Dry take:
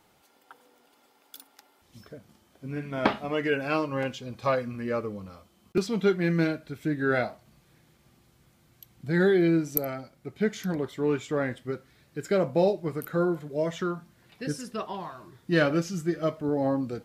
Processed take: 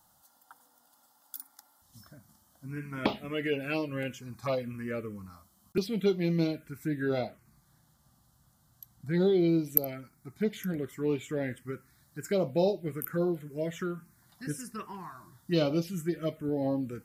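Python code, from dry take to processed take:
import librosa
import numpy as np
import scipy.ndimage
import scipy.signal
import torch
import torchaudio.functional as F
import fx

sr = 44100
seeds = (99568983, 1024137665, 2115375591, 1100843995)

y = fx.high_shelf(x, sr, hz=6100.0, db=fx.steps((0.0, 10.5), (7.19, 4.5), (9.47, 10.5)))
y = fx.env_phaser(y, sr, low_hz=400.0, high_hz=1700.0, full_db=-20.0)
y = y * 10.0 ** (-2.5 / 20.0)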